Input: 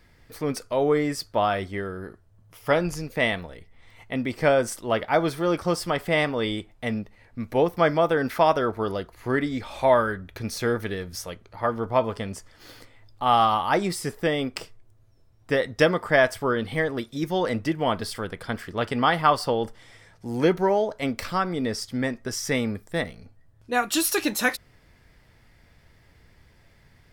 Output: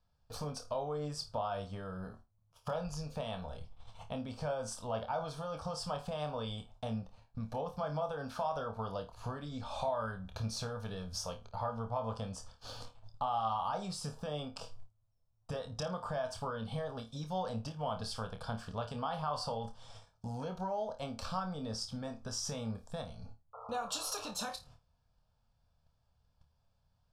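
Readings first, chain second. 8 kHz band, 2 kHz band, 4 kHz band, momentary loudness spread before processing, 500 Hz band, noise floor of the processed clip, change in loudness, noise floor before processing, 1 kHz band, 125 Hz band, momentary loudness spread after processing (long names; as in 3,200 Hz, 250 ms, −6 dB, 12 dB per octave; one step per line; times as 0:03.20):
−10.0 dB, −22.0 dB, −11.0 dB, 12 LU, −15.5 dB, −75 dBFS, −14.5 dB, −57 dBFS, −13.0 dB, −8.5 dB, 11 LU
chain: low-pass filter 6,400 Hz 12 dB per octave
noise gate −49 dBFS, range −22 dB
brickwall limiter −17.5 dBFS, peak gain reduction 11 dB
downward compressor 2.5 to 1, threshold −42 dBFS, peak gain reduction 13.5 dB
phaser with its sweep stopped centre 830 Hz, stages 4
sound drawn into the spectrogram noise, 0:23.53–0:24.31, 420–1,400 Hz −54 dBFS
flutter between parallel walls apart 4.6 metres, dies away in 0.22 s
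level +4.5 dB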